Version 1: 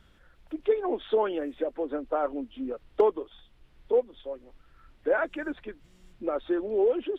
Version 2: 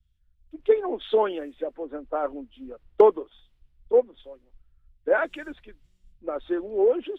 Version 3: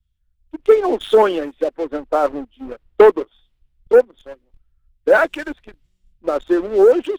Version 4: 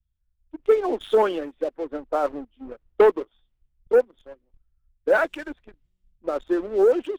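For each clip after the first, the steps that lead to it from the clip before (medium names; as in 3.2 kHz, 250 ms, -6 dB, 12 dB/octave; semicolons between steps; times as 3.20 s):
three bands expanded up and down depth 100%
waveshaping leveller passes 2; trim +3 dB
tape noise reduction on one side only decoder only; trim -6.5 dB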